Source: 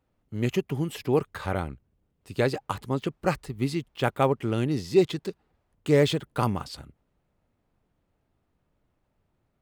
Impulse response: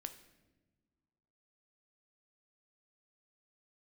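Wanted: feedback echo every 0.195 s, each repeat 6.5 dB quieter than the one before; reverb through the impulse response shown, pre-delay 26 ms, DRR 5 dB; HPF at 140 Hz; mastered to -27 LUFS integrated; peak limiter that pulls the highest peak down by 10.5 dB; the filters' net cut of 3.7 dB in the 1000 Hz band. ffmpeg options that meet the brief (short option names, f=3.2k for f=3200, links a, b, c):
-filter_complex "[0:a]highpass=140,equalizer=f=1k:t=o:g=-5,alimiter=limit=-19dB:level=0:latency=1,aecho=1:1:195|390|585|780|975|1170:0.473|0.222|0.105|0.0491|0.0231|0.0109,asplit=2[a][b];[1:a]atrim=start_sample=2205,adelay=26[c];[b][c]afir=irnorm=-1:irlink=0,volume=-1dB[d];[a][d]amix=inputs=2:normalize=0,volume=3.5dB"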